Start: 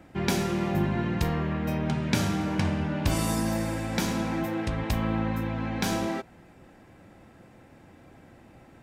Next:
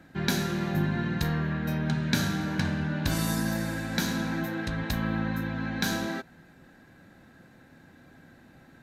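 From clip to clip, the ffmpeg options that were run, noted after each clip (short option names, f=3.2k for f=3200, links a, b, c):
-af "equalizer=f=160:t=o:w=0.33:g=7,equalizer=f=250:t=o:w=0.33:g=6,equalizer=f=1.6k:t=o:w=0.33:g=12,equalizer=f=4k:t=o:w=0.33:g=11,equalizer=f=6.3k:t=o:w=0.33:g=5,equalizer=f=12.5k:t=o:w=0.33:g=10,volume=-5dB"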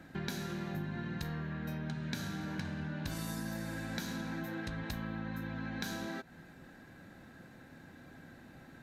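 -af "acompressor=threshold=-38dB:ratio=4"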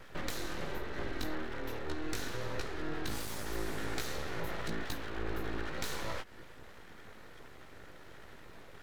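-af "flanger=delay=15.5:depth=3.8:speed=1.2,aeval=exprs='abs(val(0))':c=same,volume=7dB"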